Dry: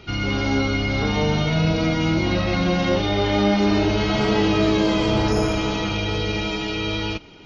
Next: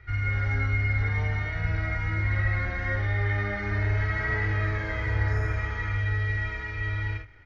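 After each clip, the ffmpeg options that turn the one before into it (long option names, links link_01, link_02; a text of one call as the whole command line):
ffmpeg -i in.wav -filter_complex "[0:a]firequalizer=gain_entry='entry(110,0);entry(160,-26);entry(480,-17);entry(1000,-15);entry(1900,4);entry(2700,-23)':delay=0.05:min_phase=1,asplit=2[link_01][link_02];[link_02]aecho=0:1:49|74:0.596|0.335[link_03];[link_01][link_03]amix=inputs=2:normalize=0" out.wav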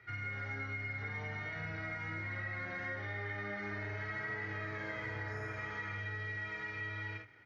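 ffmpeg -i in.wav -af "highpass=frequency=130:width=0.5412,highpass=frequency=130:width=1.3066,acompressor=threshold=-34dB:ratio=4,volume=-4dB" out.wav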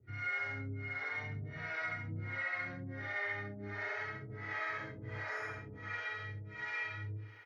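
ffmpeg -i in.wav -filter_complex "[0:a]aecho=1:1:67|134|201|268|335|402|469:0.562|0.309|0.17|0.0936|0.0515|0.0283|0.0156,acrossover=split=420[link_01][link_02];[link_01]aeval=exprs='val(0)*(1-1/2+1/2*cos(2*PI*1.4*n/s))':channel_layout=same[link_03];[link_02]aeval=exprs='val(0)*(1-1/2-1/2*cos(2*PI*1.4*n/s))':channel_layout=same[link_04];[link_03][link_04]amix=inputs=2:normalize=0,volume=3.5dB" out.wav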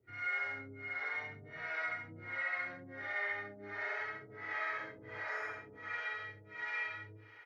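ffmpeg -i in.wav -af "bass=frequency=250:gain=-15,treble=frequency=4000:gain=-5,volume=1dB" out.wav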